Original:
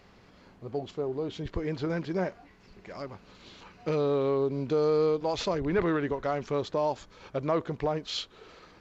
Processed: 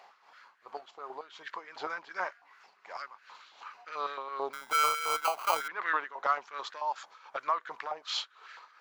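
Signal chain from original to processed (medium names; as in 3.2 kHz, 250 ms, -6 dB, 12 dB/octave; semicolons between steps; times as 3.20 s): tremolo 2.7 Hz, depth 68%; 4.53–5.68 s: sample-rate reducer 1.8 kHz, jitter 0%; step-sequenced high-pass 9.1 Hz 800–1600 Hz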